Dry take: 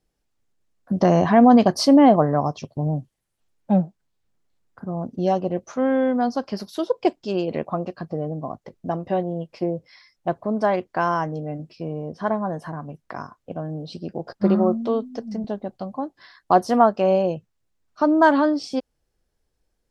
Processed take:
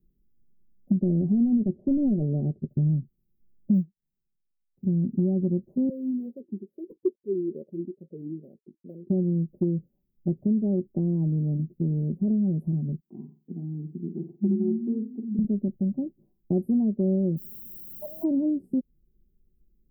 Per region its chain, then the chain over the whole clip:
0.99–2.7 bell 160 Hz -5 dB 1.3 oct + overloaded stage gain 10.5 dB + Gaussian blur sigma 6.3 samples
3.74–4.85 G.711 law mismatch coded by A + upward expander, over -39 dBFS
5.89–9.1 companded quantiser 4-bit + vowel sweep e-u 2.3 Hz
13–15.39 HPF 290 Hz + fixed phaser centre 2800 Hz, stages 8 + flutter echo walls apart 7.9 m, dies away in 0.32 s
17.36–18.23 steep high-pass 570 Hz 48 dB/oct + added noise white -46 dBFS
whole clip: inverse Chebyshev band-stop 1200–6100 Hz, stop band 70 dB; comb 5.2 ms, depth 57%; compressor 4:1, threshold -29 dBFS; gain +7 dB

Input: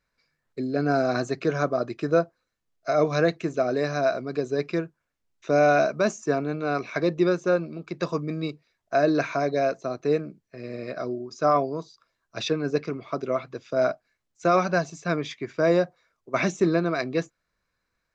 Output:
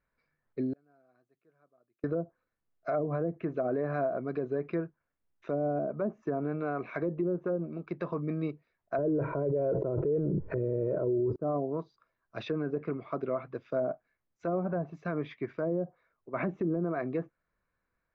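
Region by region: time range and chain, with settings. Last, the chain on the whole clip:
0.73–2.04 low shelf 430 Hz -4 dB + flipped gate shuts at -31 dBFS, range -39 dB
8.98–11.36 comb 2.1 ms, depth 69% + fast leveller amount 100%
whole clip: treble ducked by the level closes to 430 Hz, closed at -17 dBFS; LPF 1900 Hz 12 dB/oct; limiter -20 dBFS; gain -2.5 dB

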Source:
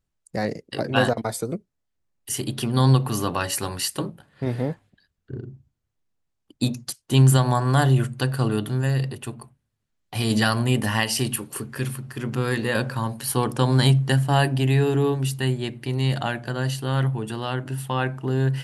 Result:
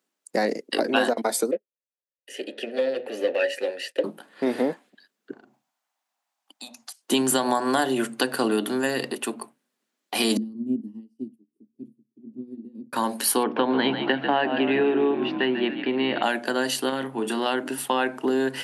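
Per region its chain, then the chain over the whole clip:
1.51–4.04 sample leveller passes 3 + vowel filter e + upward expander, over -37 dBFS
5.33–7.03 resonant low shelf 550 Hz -11.5 dB, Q 3 + compressor 2.5:1, threshold -50 dBFS
10.37–12.93 inverse Chebyshev low-pass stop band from 580 Hz + upward expander 2.5:1, over -40 dBFS
13.43–16.23 inverse Chebyshev low-pass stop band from 7300 Hz, stop band 50 dB + frequency-shifting echo 0.143 s, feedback 55%, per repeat -54 Hz, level -10 dB
16.89–17.46 tone controls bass +3 dB, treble -2 dB + compressor, threshold -24 dBFS + doubler 30 ms -9 dB
whole clip: steep high-pass 230 Hz 36 dB/oct; dynamic EQ 1200 Hz, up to -5 dB, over -47 dBFS, Q 7.5; compressor 4:1, threshold -26 dBFS; gain +7 dB

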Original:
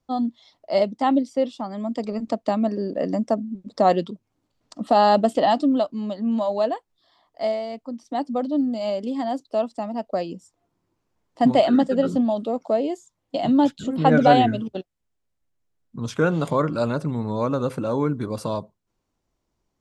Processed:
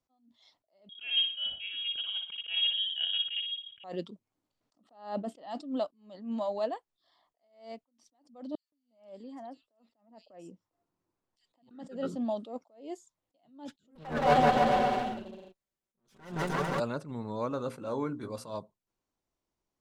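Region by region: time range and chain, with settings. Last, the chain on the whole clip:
0.89–3.84 flutter echo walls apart 10.1 m, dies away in 0.49 s + inverted band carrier 3500 Hz
4.84–5.38 expander -41 dBFS + high shelf 3900 Hz -10 dB
8.55–11.71 high shelf 5400 Hz -4.5 dB + compressor 3:1, threshold -34 dBFS + bands offset in time highs, lows 0.17 s, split 2900 Hz
13.95–16.8 minimum comb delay 5.2 ms + bouncing-ball echo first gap 0.17 s, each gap 0.8×, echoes 8, each echo -2 dB
17.49–18.55 notches 60/120/180/240/300 Hz + doubler 17 ms -11 dB
whole clip: low shelf 220 Hz -6.5 dB; attack slew limiter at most 130 dB/s; gain -8 dB

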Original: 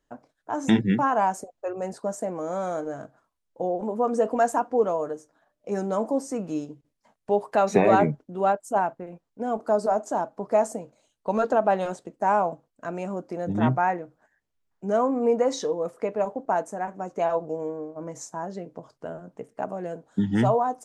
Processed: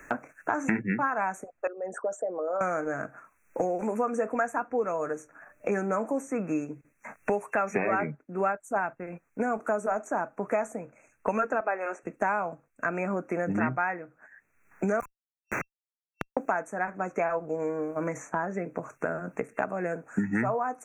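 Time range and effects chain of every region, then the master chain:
1.67–2.61 formant sharpening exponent 2 + HPF 1300 Hz 6 dB/oct + mismatched tape noise reduction encoder only
11.6–12.03 steep high-pass 280 Hz + air absorption 66 m
15–16.37 brick-wall FIR high-pass 1000 Hz + high shelf 7200 Hz +11.5 dB + Schmitt trigger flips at -28.5 dBFS
whole clip: FFT band-reject 2700–5700 Hz; band shelf 1800 Hz +10.5 dB 1.3 oct; three-band squash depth 100%; gain -5.5 dB

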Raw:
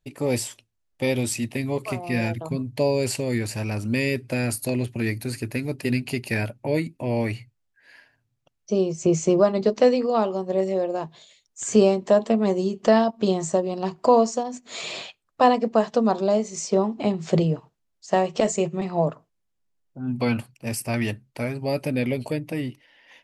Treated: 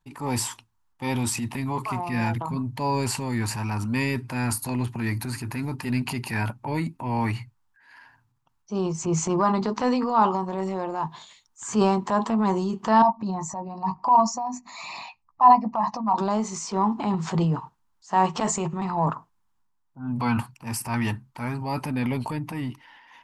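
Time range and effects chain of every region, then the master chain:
13.02–16.18 formant sharpening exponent 1.5 + fixed phaser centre 2200 Hz, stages 8 + doubler 15 ms -9 dB
whole clip: EQ curve 250 Hz 0 dB, 590 Hz -11 dB, 920 Hz +13 dB, 2200 Hz -3 dB; transient shaper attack -6 dB, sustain +6 dB

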